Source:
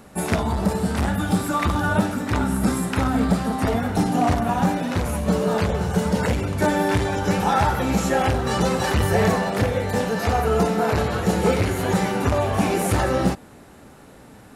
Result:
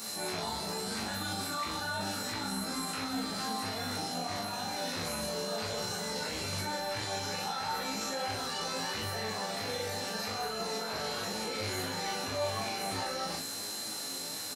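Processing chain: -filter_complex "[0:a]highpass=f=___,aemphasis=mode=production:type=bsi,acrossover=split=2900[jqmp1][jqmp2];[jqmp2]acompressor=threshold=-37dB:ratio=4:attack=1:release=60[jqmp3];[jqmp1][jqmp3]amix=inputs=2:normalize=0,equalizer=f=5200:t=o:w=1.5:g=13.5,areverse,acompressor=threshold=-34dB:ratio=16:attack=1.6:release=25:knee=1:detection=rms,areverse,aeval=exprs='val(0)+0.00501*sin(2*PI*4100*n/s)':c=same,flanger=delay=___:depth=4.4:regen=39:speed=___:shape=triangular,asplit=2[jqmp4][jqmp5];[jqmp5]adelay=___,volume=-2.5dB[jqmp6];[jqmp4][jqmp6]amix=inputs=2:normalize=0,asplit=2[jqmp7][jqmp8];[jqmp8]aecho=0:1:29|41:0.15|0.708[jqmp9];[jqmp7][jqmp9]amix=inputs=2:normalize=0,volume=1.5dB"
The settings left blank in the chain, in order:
75, 8.5, 0.87, 19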